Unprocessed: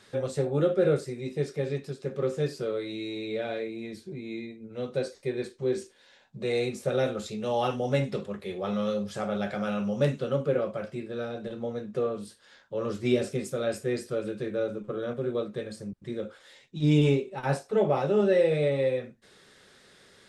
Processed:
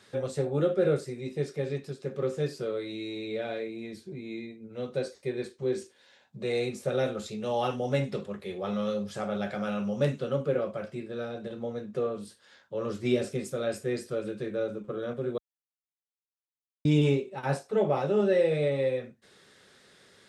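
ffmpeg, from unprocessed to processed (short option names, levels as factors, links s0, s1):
-filter_complex "[0:a]asplit=3[s0][s1][s2];[s0]atrim=end=15.38,asetpts=PTS-STARTPTS,afade=t=out:st=15.376:d=0.004:c=hsin[s3];[s1]atrim=start=15.38:end=16.85,asetpts=PTS-STARTPTS,volume=0[s4];[s2]atrim=start=16.85,asetpts=PTS-STARTPTS,afade=t=in:d=0.004:c=hsin[s5];[s3][s4][s5]concat=n=3:v=0:a=1,highpass=59,volume=0.841"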